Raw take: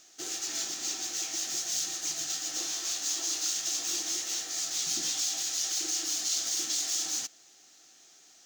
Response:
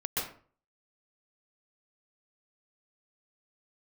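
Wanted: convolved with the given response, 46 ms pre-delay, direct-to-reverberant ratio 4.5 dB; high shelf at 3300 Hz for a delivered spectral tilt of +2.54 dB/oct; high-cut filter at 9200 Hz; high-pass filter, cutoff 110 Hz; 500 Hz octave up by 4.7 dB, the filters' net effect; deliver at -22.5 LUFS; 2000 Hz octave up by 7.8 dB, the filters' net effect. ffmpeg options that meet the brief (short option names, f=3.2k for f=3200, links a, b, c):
-filter_complex "[0:a]highpass=110,lowpass=9.2k,equalizer=f=500:t=o:g=6.5,equalizer=f=2k:t=o:g=8,highshelf=f=3.3k:g=4,asplit=2[a][b];[1:a]atrim=start_sample=2205,adelay=46[c];[b][c]afir=irnorm=-1:irlink=0,volume=-10.5dB[d];[a][d]amix=inputs=2:normalize=0,volume=3dB"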